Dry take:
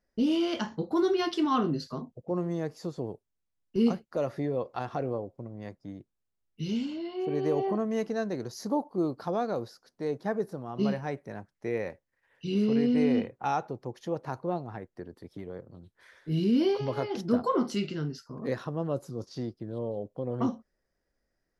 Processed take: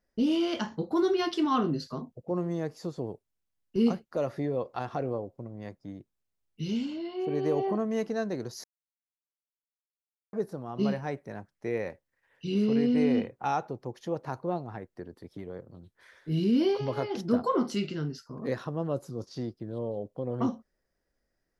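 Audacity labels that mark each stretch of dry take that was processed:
8.640000	10.330000	silence

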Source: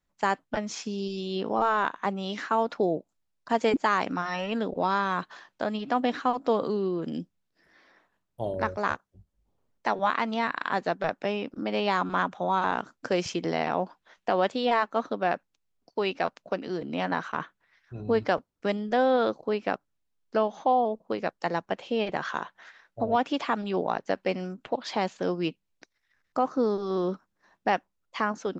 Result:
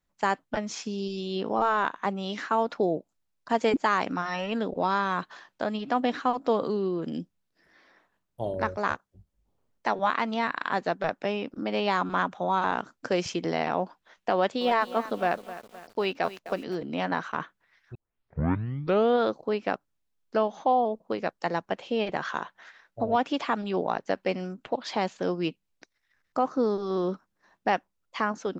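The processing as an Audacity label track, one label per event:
14.350000	16.750000	feedback echo at a low word length 259 ms, feedback 55%, word length 7 bits, level −14 dB
17.950000	17.950000	tape start 1.25 s

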